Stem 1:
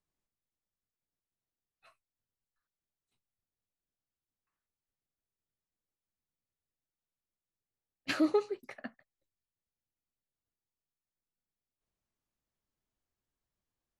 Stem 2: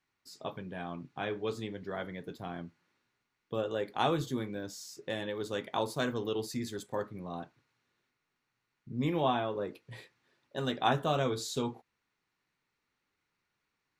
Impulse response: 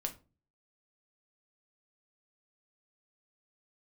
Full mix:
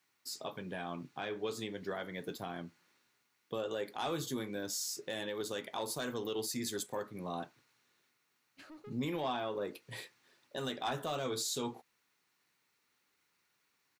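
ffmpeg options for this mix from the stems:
-filter_complex "[0:a]asoftclip=type=tanh:threshold=0.0282,adelay=500,volume=0.126[s0];[1:a]highpass=f=210:p=1,highshelf=f=5100:g=10.5,asoftclip=type=tanh:threshold=0.0891,volume=1.41[s1];[s0][s1]amix=inputs=2:normalize=0,alimiter=level_in=1.58:limit=0.0631:level=0:latency=1:release=239,volume=0.631"

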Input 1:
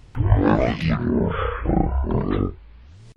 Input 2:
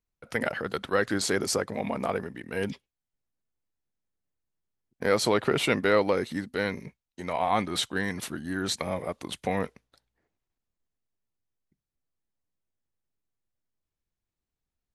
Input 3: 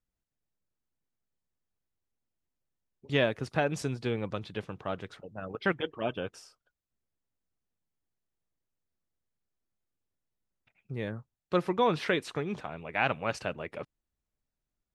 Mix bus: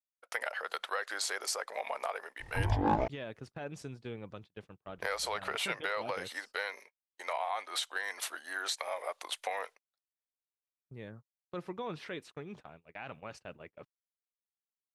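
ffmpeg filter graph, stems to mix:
-filter_complex "[0:a]equalizer=f=860:w=4.6:g=14.5,acompressor=threshold=0.0251:ratio=1.5,aeval=exprs='clip(val(0),-1,0.168)':c=same,adelay=2400,volume=0.501,asplit=3[s0][s1][s2];[s0]atrim=end=3.08,asetpts=PTS-STARTPTS,afade=t=out:st=3.076:d=0.004:c=hsin[s3];[s1]atrim=start=3.08:end=4.87,asetpts=PTS-STARTPTS,volume=0[s4];[s2]atrim=start=4.87,asetpts=PTS-STARTPTS,afade=t=in:d=0.004:c=hsin[s5];[s3][s4][s5]concat=n=3:v=0:a=1[s6];[1:a]highpass=f=610:w=0.5412,highpass=f=610:w=1.3066,acompressor=threshold=0.0224:ratio=5,volume=1.12[s7];[2:a]alimiter=limit=0.106:level=0:latency=1:release=19,volume=0.282,asplit=2[s8][s9];[s9]apad=whole_len=245294[s10];[s6][s10]sidechaincompress=threshold=0.00112:ratio=8:attack=6.7:release=390[s11];[s11][s7][s8]amix=inputs=3:normalize=0,agate=range=0.0316:threshold=0.00316:ratio=16:detection=peak"

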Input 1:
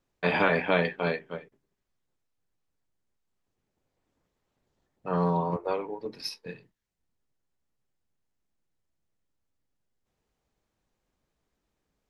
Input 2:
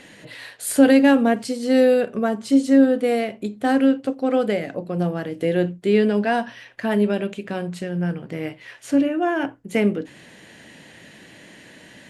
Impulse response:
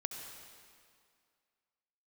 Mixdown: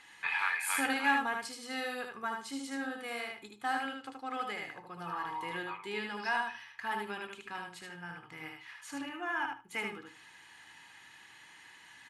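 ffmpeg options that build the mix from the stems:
-filter_complex "[0:a]bandpass=f=2200:t=q:w=1.5:csg=0,volume=0.596[s0];[1:a]volume=0.282,asplit=2[s1][s2];[s2]volume=0.631,aecho=0:1:76|152|228:1|0.16|0.0256[s3];[s0][s1][s3]amix=inputs=3:normalize=0,lowshelf=f=720:t=q:w=3:g=-10.5,aecho=1:1:2.4:0.47"

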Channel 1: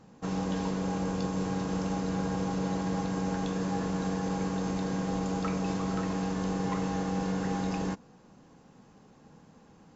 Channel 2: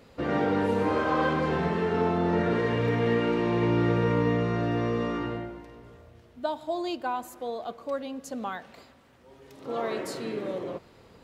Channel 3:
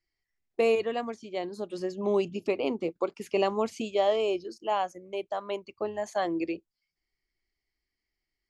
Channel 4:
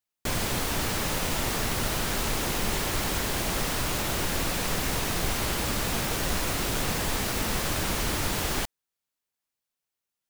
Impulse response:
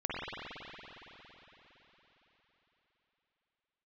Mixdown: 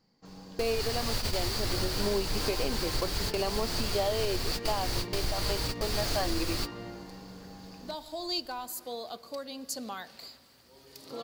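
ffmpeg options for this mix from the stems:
-filter_complex "[0:a]volume=0.141[s0];[1:a]aeval=exprs='clip(val(0),-1,0.0944)':c=same,alimiter=level_in=1.06:limit=0.0631:level=0:latency=1:release=220,volume=0.944,aemphasis=mode=production:type=75fm,adelay=1450,volume=0.596[s1];[2:a]volume=1.33,asplit=2[s2][s3];[3:a]lowshelf=f=120:t=q:w=1.5:g=7.5,flanger=delay=6.2:depth=2.3:regen=-46:speed=0.36:shape=triangular,volume=1.12[s4];[s3]apad=whole_len=453961[s5];[s4][s5]sidechaingate=range=0.0224:threshold=0.00891:ratio=16:detection=peak[s6];[s0][s1][s2][s6]amix=inputs=4:normalize=0,equalizer=f=4600:t=o:w=0.36:g=14.5,alimiter=limit=0.112:level=0:latency=1:release=448"

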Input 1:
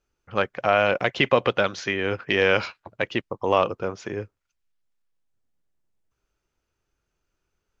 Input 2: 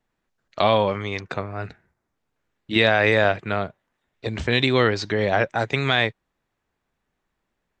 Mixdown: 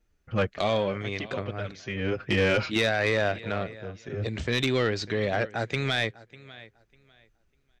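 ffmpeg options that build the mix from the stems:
-filter_complex "[0:a]lowshelf=f=220:g=11,asplit=2[s0][s1];[s1]adelay=6,afreqshift=-2.6[s2];[s0][s2]amix=inputs=2:normalize=1,volume=1.19[s3];[1:a]volume=0.668,asplit=3[s4][s5][s6];[s5]volume=0.0841[s7];[s6]apad=whole_len=344258[s8];[s3][s8]sidechaincompress=threshold=0.00447:ratio=3:attack=11:release=411[s9];[s7]aecho=0:1:598|1196|1794:1|0.21|0.0441[s10];[s9][s4][s10]amix=inputs=3:normalize=0,equalizer=f=950:t=o:w=0.78:g=-6.5,asoftclip=type=tanh:threshold=0.158"

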